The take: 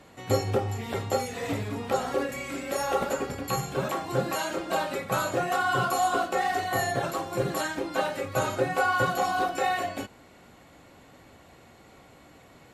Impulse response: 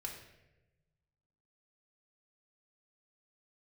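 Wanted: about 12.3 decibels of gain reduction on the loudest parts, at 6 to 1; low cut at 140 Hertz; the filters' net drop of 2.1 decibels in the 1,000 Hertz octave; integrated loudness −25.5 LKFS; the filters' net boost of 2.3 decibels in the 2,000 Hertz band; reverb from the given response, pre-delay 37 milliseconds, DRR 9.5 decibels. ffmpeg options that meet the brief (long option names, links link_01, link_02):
-filter_complex "[0:a]highpass=140,equalizer=frequency=1000:width_type=o:gain=-4.5,equalizer=frequency=2000:width_type=o:gain=5.5,acompressor=threshold=-35dB:ratio=6,asplit=2[link_01][link_02];[1:a]atrim=start_sample=2205,adelay=37[link_03];[link_02][link_03]afir=irnorm=-1:irlink=0,volume=-8dB[link_04];[link_01][link_04]amix=inputs=2:normalize=0,volume=12dB"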